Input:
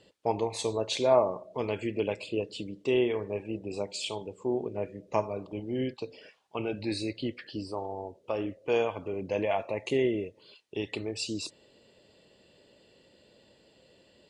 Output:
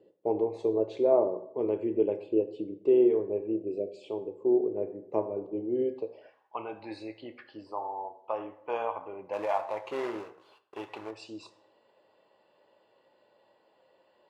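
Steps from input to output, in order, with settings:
0:09.33–0:11.11: log-companded quantiser 4 bits
on a send at −7.5 dB: convolution reverb RT60 0.70 s, pre-delay 4 ms
0:03.63–0:04.04: on the sum: time-frequency box erased 730–2,200 Hz
band-pass filter sweep 390 Hz → 950 Hz, 0:05.84–0:06.41
level +5.5 dB

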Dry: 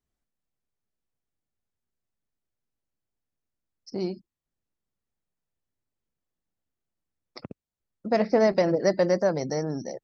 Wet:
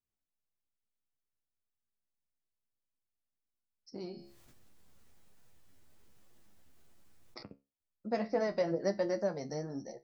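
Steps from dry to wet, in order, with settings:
flanger 1.1 Hz, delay 8 ms, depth 5.2 ms, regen +40%
tuned comb filter 69 Hz, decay 0.26 s, harmonics all, mix 60%
0:04.11–0:07.43: envelope flattener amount 70%
level −2.5 dB

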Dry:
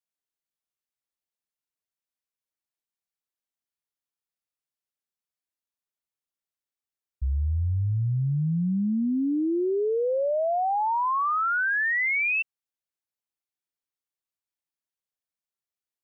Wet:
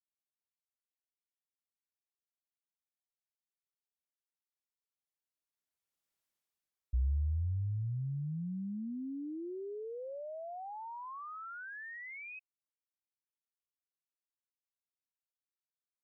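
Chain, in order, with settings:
source passing by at 0:06.20, 17 m/s, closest 4.8 metres
tape wow and flutter 29 cents
level +4.5 dB

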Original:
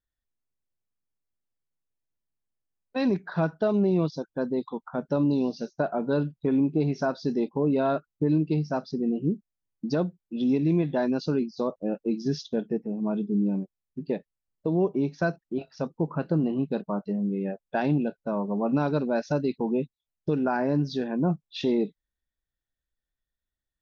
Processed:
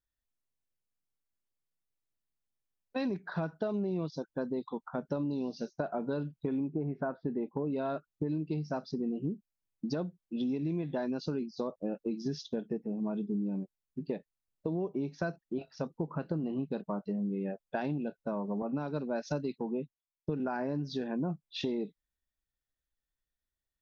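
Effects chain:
downward compressor, threshold −27 dBFS, peak gain reduction 8 dB
0:06.67–0:07.64: low-pass filter 1,600 Hz → 2,400 Hz 24 dB per octave
0:18.62–0:20.40: multiband upward and downward expander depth 100%
level −3 dB

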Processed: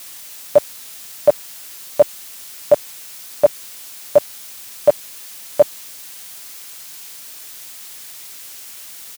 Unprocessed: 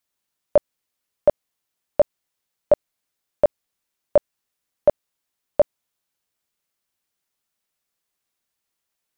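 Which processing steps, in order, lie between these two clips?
comb filter 6.9 ms, depth 80%
in parallel at −5 dB: bit-depth reduction 6 bits, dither triangular
on the sum: high-pass filter 81 Hz
high-shelf EQ 2,000 Hz +10 dB
level −4.5 dB

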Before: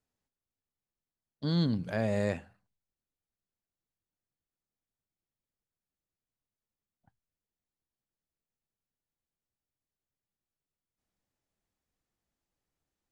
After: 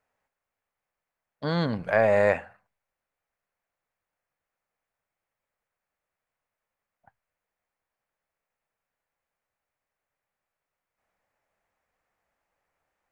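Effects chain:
0:01.78–0:02.35: gain on one half-wave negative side −3 dB
flat-topped bell 1,100 Hz +14 dB 2.7 octaves

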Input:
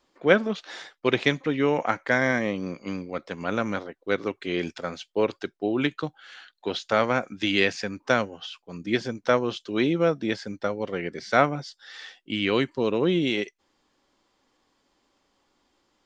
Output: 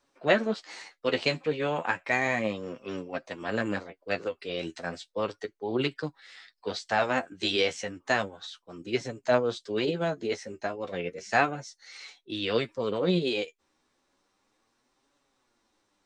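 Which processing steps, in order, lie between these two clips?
flanger 0.33 Hz, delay 6.9 ms, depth 6.2 ms, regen +30%
formants moved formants +3 semitones

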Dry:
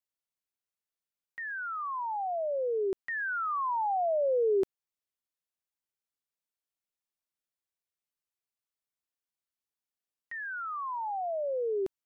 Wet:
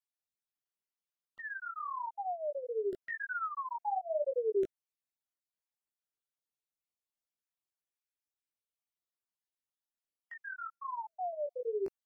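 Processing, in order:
time-frequency cells dropped at random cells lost 38%
chorus effect 0.91 Hz, delay 16 ms, depth 4.6 ms
level −1 dB

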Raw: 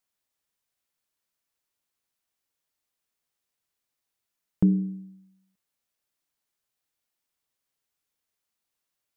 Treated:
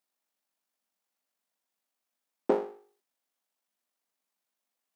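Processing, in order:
time stretch by overlap-add 0.54×, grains 41 ms
full-wave rectification
Chebyshev high-pass with heavy ripple 180 Hz, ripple 6 dB
level +8.5 dB

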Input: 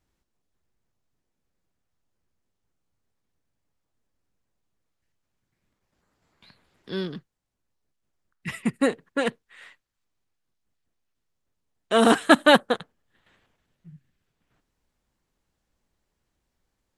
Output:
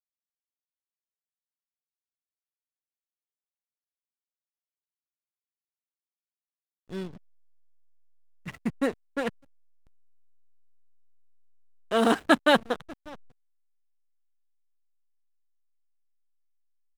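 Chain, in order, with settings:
single-tap delay 592 ms −21.5 dB
slack as between gear wheels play −28 dBFS
level −4.5 dB

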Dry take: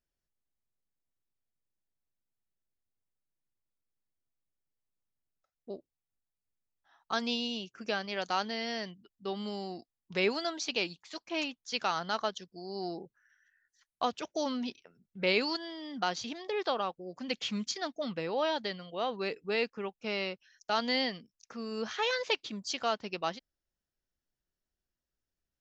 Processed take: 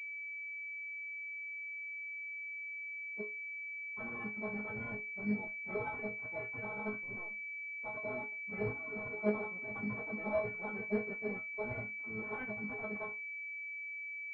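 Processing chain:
sub-harmonics by changed cycles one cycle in 2, muted
brickwall limiter −25.5 dBFS, peak gain reduction 10.5 dB
automatic gain control gain up to 12 dB
dead-zone distortion −47 dBFS
stiff-string resonator 210 Hz, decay 0.45 s, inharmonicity 0.002
time stretch by phase vocoder 0.56×
switching amplifier with a slow clock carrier 2,300 Hz
level +5.5 dB

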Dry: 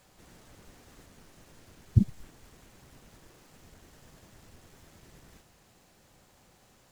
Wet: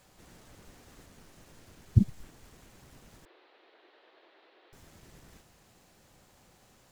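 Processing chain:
0:03.25–0:04.73: Chebyshev band-pass filter 340–4,000 Hz, order 4

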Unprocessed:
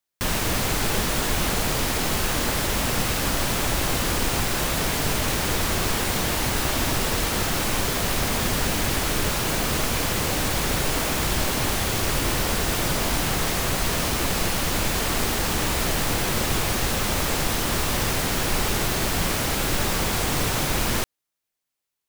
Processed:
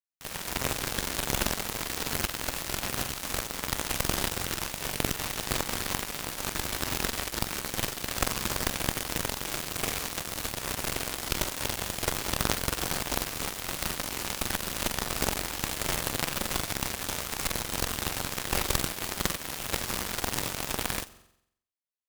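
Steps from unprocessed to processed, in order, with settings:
flutter between parallel walls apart 7.7 metres, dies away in 0.7 s
harmonic generator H 3 −9 dB, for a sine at −7 dBFS
level +4.5 dB

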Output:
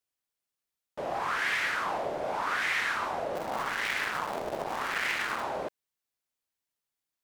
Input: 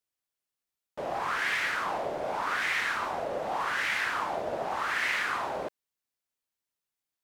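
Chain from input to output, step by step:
0:03.35–0:05.44: sub-harmonics by changed cycles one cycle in 3, muted

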